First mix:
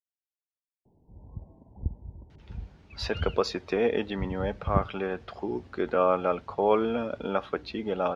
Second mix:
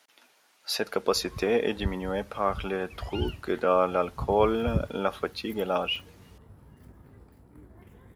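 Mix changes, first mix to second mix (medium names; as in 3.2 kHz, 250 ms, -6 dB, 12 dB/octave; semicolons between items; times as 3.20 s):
speech: entry -2.30 s; first sound: remove steep low-pass 950 Hz 96 dB/octave; master: remove distance through air 150 m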